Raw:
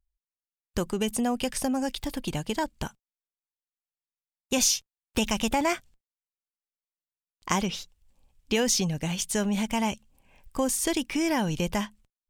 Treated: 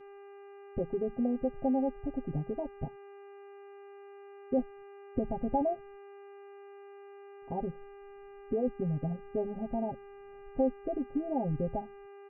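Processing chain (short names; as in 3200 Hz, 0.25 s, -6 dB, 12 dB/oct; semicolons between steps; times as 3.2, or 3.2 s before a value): formant sharpening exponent 1.5; Chebyshev low-pass 840 Hz, order 8; buzz 400 Hz, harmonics 7, -50 dBFS -9 dB/oct; comb 7.5 ms, depth 82%; gain -5.5 dB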